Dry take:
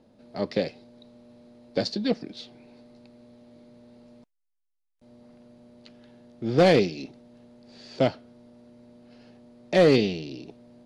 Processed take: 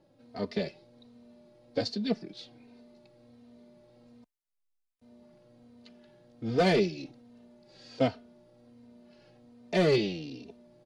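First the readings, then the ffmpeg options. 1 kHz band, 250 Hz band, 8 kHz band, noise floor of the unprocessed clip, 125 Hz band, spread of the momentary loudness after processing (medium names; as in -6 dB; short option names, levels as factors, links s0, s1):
-4.5 dB, -5.0 dB, no reading, -77 dBFS, -4.5 dB, 21 LU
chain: -filter_complex "[0:a]asplit=2[s0][s1];[s1]adelay=3.1,afreqshift=-1.3[s2];[s0][s2]amix=inputs=2:normalize=1,volume=0.841"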